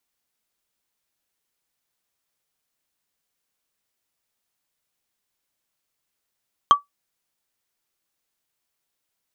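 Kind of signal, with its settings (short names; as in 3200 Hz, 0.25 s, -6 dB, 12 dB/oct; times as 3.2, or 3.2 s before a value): wood hit, lowest mode 1150 Hz, decay 0.14 s, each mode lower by 10.5 dB, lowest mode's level -4.5 dB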